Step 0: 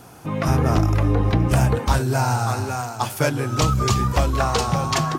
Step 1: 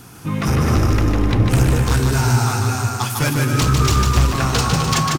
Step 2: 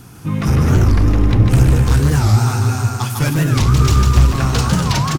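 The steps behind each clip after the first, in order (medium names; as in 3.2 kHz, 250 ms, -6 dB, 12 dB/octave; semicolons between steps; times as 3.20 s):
peaking EQ 640 Hz -11.5 dB 1.2 oct; hard clipper -18.5 dBFS, distortion -10 dB; bouncing-ball echo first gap 150 ms, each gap 0.7×, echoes 5; trim +5.5 dB
bass shelf 230 Hz +7.5 dB; warped record 45 rpm, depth 250 cents; trim -2 dB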